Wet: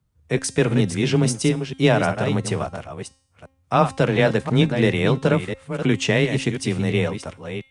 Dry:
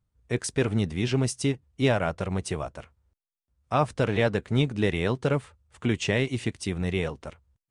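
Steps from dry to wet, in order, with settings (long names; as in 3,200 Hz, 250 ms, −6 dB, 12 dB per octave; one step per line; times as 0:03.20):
delay that plays each chunk backwards 346 ms, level −8.5 dB
frequency shifter +18 Hz
hum removal 266.8 Hz, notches 39
level +6 dB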